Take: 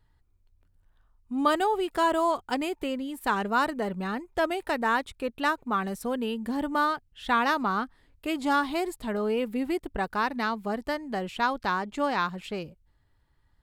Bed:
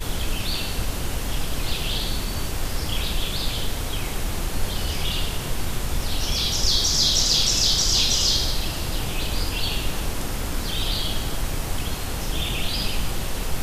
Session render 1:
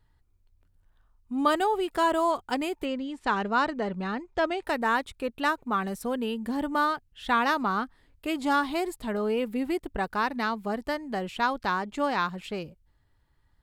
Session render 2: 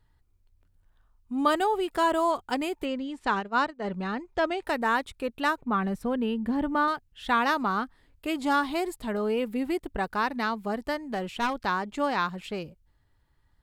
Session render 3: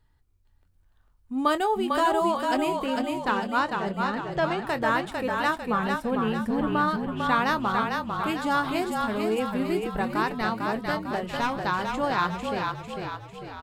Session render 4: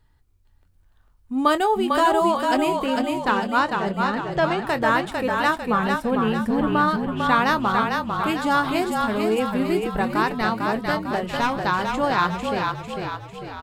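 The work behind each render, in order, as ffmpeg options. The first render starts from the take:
ffmpeg -i in.wav -filter_complex "[0:a]asettb=1/sr,asplit=3[link_01][link_02][link_03];[link_01]atrim=end=2.854[link_04];[link_02]atrim=start=2.85:end=4.63,asetpts=PTS-STARTPTS,afade=type=in:duration=0.004:curve=qsin,afade=type=out:start_time=1.776:duration=0.004:curve=qsin,lowpass=frequency=6600:width=0.5412,lowpass=frequency=6600:width=1.3066[link_05];[link_03]atrim=start=4.626[link_06];[link_04][link_05]acrossfade=duration=0.004:curve1=hsin:curve2=qsin[link_07];[link_07][link_06]acrossfade=duration=0.004:curve1=qsin:curve2=hsin" out.wav
ffmpeg -i in.wav -filter_complex "[0:a]asplit=3[link_01][link_02][link_03];[link_01]afade=type=out:start_time=3.39:duration=0.02[link_04];[link_02]agate=range=-33dB:threshold=-24dB:ratio=3:release=100:detection=peak,afade=type=in:start_time=3.39:duration=0.02,afade=type=out:start_time=3.83:duration=0.02[link_05];[link_03]afade=type=in:start_time=3.83:duration=0.02[link_06];[link_04][link_05][link_06]amix=inputs=3:normalize=0,asettb=1/sr,asplit=3[link_07][link_08][link_09];[link_07]atrim=end=5.614[link_10];[link_08]atrim=start=5.61:end=6.88,asetpts=PTS-STARTPTS,afade=type=in:duration=0.004:curve=qsin,afade=type=out:start_time=1.266:duration=0.004:curve=qsin,bass=frequency=250:gain=6,treble=frequency=4000:gain=-11[link_11];[link_09]atrim=start=6.876[link_12];[link_10][link_11]acrossfade=duration=0.004:curve1=hsin:curve2=qsin[link_13];[link_13][link_12]acrossfade=duration=0.004:curve1=qsin:curve2=hsin,asettb=1/sr,asplit=3[link_14][link_15][link_16];[link_14]atrim=end=11.034[link_17];[link_15]atrim=start=11.03:end=11.54,asetpts=PTS-STARTPTS,afade=type=in:duration=0.004:curve=qsin,afade=type=out:start_time=0.506:duration=0.004:curve=qsin,aeval=exprs='clip(val(0),-1,0.0422)':channel_layout=same[link_18];[link_16]atrim=start=11.536[link_19];[link_17][link_18]acrossfade=duration=0.004:curve1=hsin:curve2=qsin[link_20];[link_20][link_19]acrossfade=duration=0.004:curve1=qsin:curve2=hsin" out.wav
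ffmpeg -i in.wav -filter_complex "[0:a]asplit=2[link_01][link_02];[link_02]adelay=23,volume=-13dB[link_03];[link_01][link_03]amix=inputs=2:normalize=0,asplit=8[link_04][link_05][link_06][link_07][link_08][link_09][link_10][link_11];[link_05]adelay=449,afreqshift=-32,volume=-4dB[link_12];[link_06]adelay=898,afreqshift=-64,volume=-9.7dB[link_13];[link_07]adelay=1347,afreqshift=-96,volume=-15.4dB[link_14];[link_08]adelay=1796,afreqshift=-128,volume=-21dB[link_15];[link_09]adelay=2245,afreqshift=-160,volume=-26.7dB[link_16];[link_10]adelay=2694,afreqshift=-192,volume=-32.4dB[link_17];[link_11]adelay=3143,afreqshift=-224,volume=-38.1dB[link_18];[link_04][link_12][link_13][link_14][link_15][link_16][link_17][link_18]amix=inputs=8:normalize=0" out.wav
ffmpeg -i in.wav -af "volume=4.5dB" out.wav

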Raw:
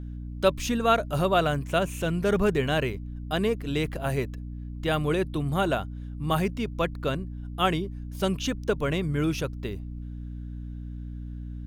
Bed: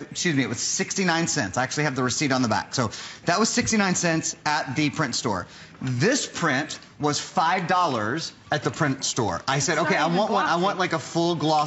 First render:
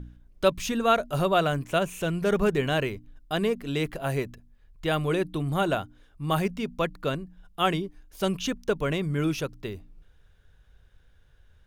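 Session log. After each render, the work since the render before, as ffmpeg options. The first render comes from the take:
ffmpeg -i in.wav -af "bandreject=frequency=60:width_type=h:width=4,bandreject=frequency=120:width_type=h:width=4,bandreject=frequency=180:width_type=h:width=4,bandreject=frequency=240:width_type=h:width=4,bandreject=frequency=300:width_type=h:width=4" out.wav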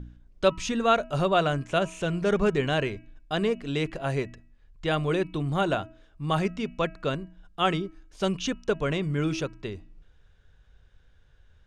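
ffmpeg -i in.wav -af "lowpass=frequency=7900:width=0.5412,lowpass=frequency=7900:width=1.3066,bandreject=frequency=323.2:width_type=h:width=4,bandreject=frequency=646.4:width_type=h:width=4,bandreject=frequency=969.6:width_type=h:width=4,bandreject=frequency=1292.8:width_type=h:width=4,bandreject=frequency=1616:width_type=h:width=4,bandreject=frequency=1939.2:width_type=h:width=4,bandreject=frequency=2262.4:width_type=h:width=4,bandreject=frequency=2585.6:width_type=h:width=4,bandreject=frequency=2908.8:width_type=h:width=4" out.wav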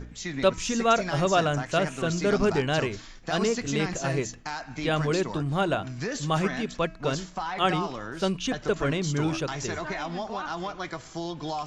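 ffmpeg -i in.wav -i bed.wav -filter_complex "[1:a]volume=-11dB[link_01];[0:a][link_01]amix=inputs=2:normalize=0" out.wav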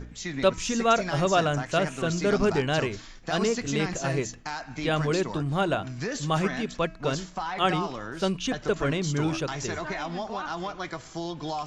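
ffmpeg -i in.wav -af anull out.wav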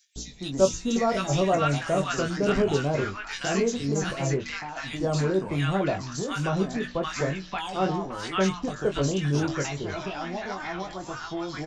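ffmpeg -i in.wav -filter_complex "[0:a]asplit=2[link_01][link_02];[link_02]adelay=21,volume=-6dB[link_03];[link_01][link_03]amix=inputs=2:normalize=0,acrossover=split=1100|3300[link_04][link_05][link_06];[link_04]adelay=160[link_07];[link_05]adelay=730[link_08];[link_07][link_08][link_06]amix=inputs=3:normalize=0" out.wav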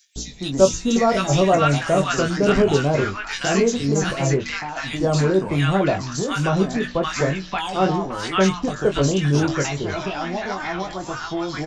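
ffmpeg -i in.wav -af "volume=6.5dB,alimiter=limit=-3dB:level=0:latency=1" out.wav

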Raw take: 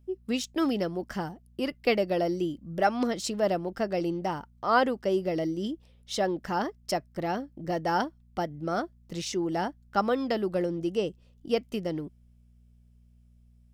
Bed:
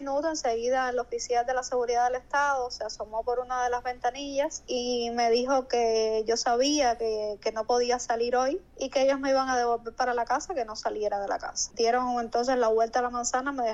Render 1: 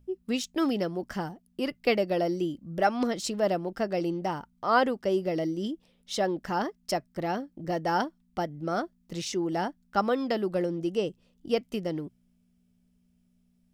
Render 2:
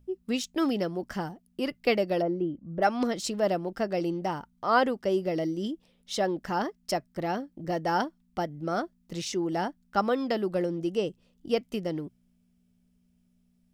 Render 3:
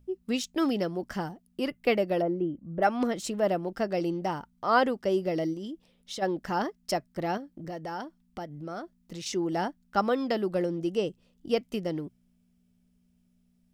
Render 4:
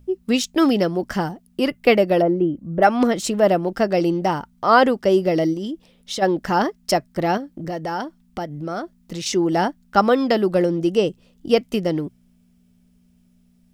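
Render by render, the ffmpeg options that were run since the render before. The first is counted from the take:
ffmpeg -i in.wav -af "bandreject=frequency=60:width_type=h:width=4,bandreject=frequency=120:width_type=h:width=4" out.wav
ffmpeg -i in.wav -filter_complex "[0:a]asplit=3[link_01][link_02][link_03];[link_01]afade=type=out:start_time=2.21:duration=0.02[link_04];[link_02]lowpass=1300,afade=type=in:start_time=2.21:duration=0.02,afade=type=out:start_time=2.81:duration=0.02[link_05];[link_03]afade=type=in:start_time=2.81:duration=0.02[link_06];[link_04][link_05][link_06]amix=inputs=3:normalize=0" out.wav
ffmpeg -i in.wav -filter_complex "[0:a]asettb=1/sr,asplit=3[link_01][link_02][link_03];[link_01]atrim=end=1.674[link_04];[link_02]atrim=start=1.67:end=3.63,asetpts=PTS-STARTPTS,afade=type=in:duration=0.004:curve=qsin,afade=type=out:start_time=1.956:duration=0.004:curve=qsin,equalizer=frequency=4800:width_type=o:width=0.77:gain=-6.5[link_05];[link_03]atrim=start=3.626[link_06];[link_04][link_05]acrossfade=duration=0.004:curve1=hsin:curve2=qsin[link_07];[link_07][link_06]acrossfade=duration=0.004:curve1=qsin:curve2=hsin,asplit=3[link_08][link_09][link_10];[link_08]afade=type=out:start_time=5.53:duration=0.02[link_11];[link_09]acompressor=threshold=-34dB:ratio=6:attack=3.2:release=140:knee=1:detection=peak,afade=type=in:start_time=5.53:duration=0.02,afade=type=out:start_time=6.21:duration=0.02[link_12];[link_10]afade=type=in:start_time=6.21:duration=0.02[link_13];[link_11][link_12][link_13]amix=inputs=3:normalize=0,asettb=1/sr,asplit=3[link_14][link_15][link_16];[link_14]atrim=end=7.374[link_17];[link_15]atrim=start=7.37:end=9.26,asetpts=PTS-STARTPTS,afade=type=in:duration=0.004:curve=qsin,afade=type=out:start_time=1.886:duration=0.004:curve=qsin,acompressor=threshold=-37dB:ratio=2.5:attack=3.2:release=140:knee=1:detection=peak[link_18];[link_16]atrim=start=9.256[link_19];[link_17][link_18]acrossfade=duration=0.004:curve1=hsin:curve2=qsin[link_20];[link_20][link_19]acrossfade=duration=0.004:curve1=qsin:curve2=hsin" out.wav
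ffmpeg -i in.wav -af "volume=10dB,alimiter=limit=-3dB:level=0:latency=1" out.wav

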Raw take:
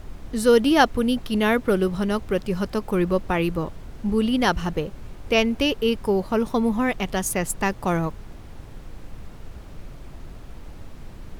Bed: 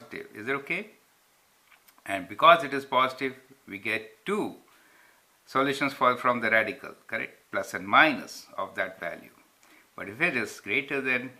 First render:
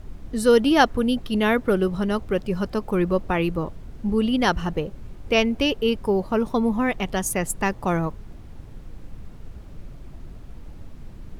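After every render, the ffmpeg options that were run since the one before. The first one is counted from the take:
ffmpeg -i in.wav -af "afftdn=noise_reduction=6:noise_floor=-41" out.wav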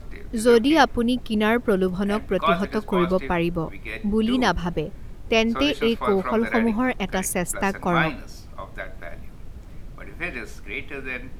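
ffmpeg -i in.wav -i bed.wav -filter_complex "[1:a]volume=-4.5dB[link_01];[0:a][link_01]amix=inputs=2:normalize=0" out.wav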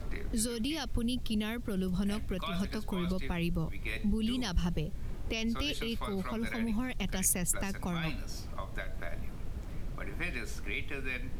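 ffmpeg -i in.wav -filter_complex "[0:a]alimiter=limit=-16.5dB:level=0:latency=1:release=29,acrossover=split=170|3000[link_01][link_02][link_03];[link_02]acompressor=threshold=-39dB:ratio=6[link_04];[link_01][link_04][link_03]amix=inputs=3:normalize=0" out.wav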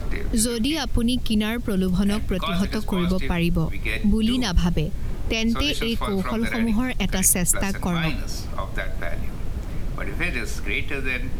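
ffmpeg -i in.wav -af "volume=11dB" out.wav

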